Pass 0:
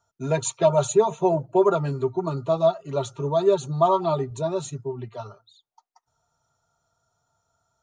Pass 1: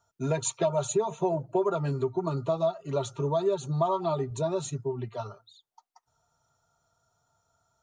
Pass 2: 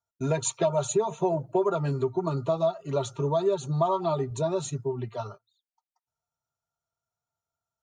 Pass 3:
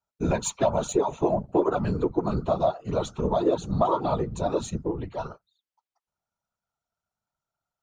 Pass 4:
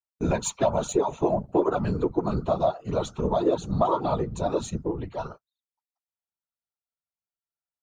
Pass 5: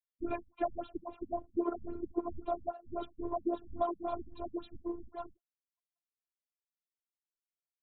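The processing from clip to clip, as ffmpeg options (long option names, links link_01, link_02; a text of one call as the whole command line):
ffmpeg -i in.wav -af "acompressor=threshold=-25dB:ratio=3" out.wav
ffmpeg -i in.wav -af "agate=range=-20dB:threshold=-44dB:ratio=16:detection=peak,volume=1.5dB" out.wav
ffmpeg -i in.wav -af "afftfilt=real='hypot(re,im)*cos(2*PI*random(0))':imag='hypot(re,im)*sin(2*PI*random(1))':win_size=512:overlap=0.75,adynamicsmooth=sensitivity=5:basefreq=7700,volume=7.5dB" out.wav
ffmpeg -i in.wav -af "agate=range=-17dB:threshold=-44dB:ratio=16:detection=peak" out.wav
ffmpeg -i in.wav -af "afftfilt=real='hypot(re,im)*cos(PI*b)':imag='0':win_size=512:overlap=0.75,afftfilt=real='re*lt(b*sr/1024,220*pow(4300/220,0.5+0.5*sin(2*PI*3.7*pts/sr)))':imag='im*lt(b*sr/1024,220*pow(4300/220,0.5+0.5*sin(2*PI*3.7*pts/sr)))':win_size=1024:overlap=0.75,volume=-7dB" out.wav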